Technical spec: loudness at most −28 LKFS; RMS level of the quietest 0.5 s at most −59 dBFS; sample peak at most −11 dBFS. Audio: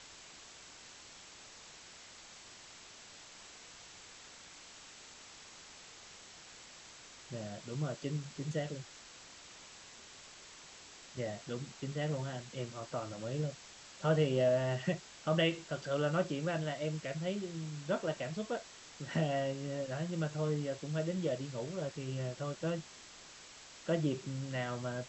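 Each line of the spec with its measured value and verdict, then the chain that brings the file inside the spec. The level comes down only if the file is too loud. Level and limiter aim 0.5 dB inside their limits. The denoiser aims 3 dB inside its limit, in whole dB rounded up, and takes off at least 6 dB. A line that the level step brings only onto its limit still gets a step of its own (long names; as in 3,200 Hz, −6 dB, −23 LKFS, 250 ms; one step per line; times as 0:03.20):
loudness −37.0 LKFS: in spec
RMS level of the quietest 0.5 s −54 dBFS: out of spec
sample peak −18.0 dBFS: in spec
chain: broadband denoise 8 dB, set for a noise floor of −54 dBFS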